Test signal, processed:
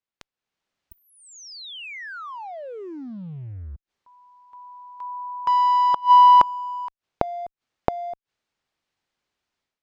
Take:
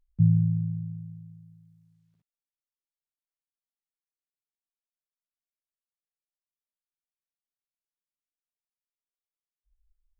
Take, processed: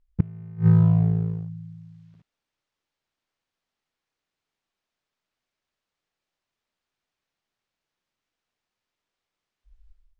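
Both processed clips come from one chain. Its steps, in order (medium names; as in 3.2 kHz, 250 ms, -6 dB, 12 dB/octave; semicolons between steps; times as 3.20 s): level rider gain up to 14 dB; in parallel at -10.5 dB: fuzz box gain 25 dB, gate -32 dBFS; on the sum: inverted gate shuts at -10 dBFS, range -27 dB; distance through air 130 m; trim +3 dB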